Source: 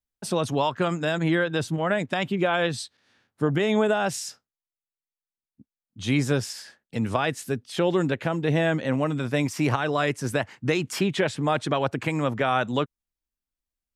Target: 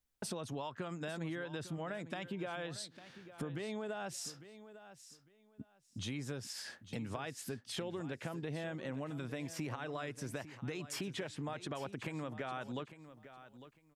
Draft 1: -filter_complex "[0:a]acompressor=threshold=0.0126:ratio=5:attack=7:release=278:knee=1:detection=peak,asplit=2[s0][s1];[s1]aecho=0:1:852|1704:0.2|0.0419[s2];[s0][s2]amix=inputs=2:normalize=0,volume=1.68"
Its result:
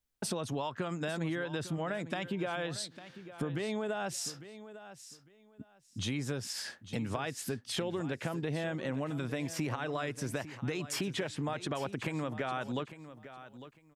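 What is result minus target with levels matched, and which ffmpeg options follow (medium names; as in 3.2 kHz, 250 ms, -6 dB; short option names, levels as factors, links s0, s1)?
compression: peak gain reduction -6 dB
-filter_complex "[0:a]acompressor=threshold=0.00531:ratio=5:attack=7:release=278:knee=1:detection=peak,asplit=2[s0][s1];[s1]aecho=0:1:852|1704:0.2|0.0419[s2];[s0][s2]amix=inputs=2:normalize=0,volume=1.68"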